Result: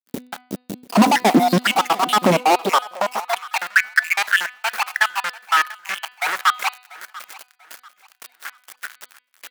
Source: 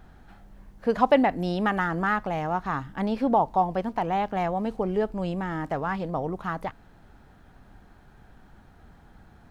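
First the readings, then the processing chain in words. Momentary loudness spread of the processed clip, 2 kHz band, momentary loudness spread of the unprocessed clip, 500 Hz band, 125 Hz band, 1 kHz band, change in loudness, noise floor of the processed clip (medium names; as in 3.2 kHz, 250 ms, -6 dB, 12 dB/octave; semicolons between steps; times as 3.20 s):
20 LU, +14.5 dB, 9 LU, +2.5 dB, +3.0 dB, +7.0 dB, +7.5 dB, -62 dBFS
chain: random holes in the spectrogram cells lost 80%; high-pass 58 Hz 12 dB/octave; in parallel at -0.5 dB: compression, threshold -41 dBFS, peak gain reduction 23 dB; on the sum: added noise white -62 dBFS; fuzz box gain 41 dB, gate -49 dBFS; de-hum 249.3 Hz, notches 19; on a send: feedback delay 691 ms, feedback 33%, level -20 dB; on the sum: high-pass sweep 240 Hz -> 1.5 kHz, 2.32–3.50 s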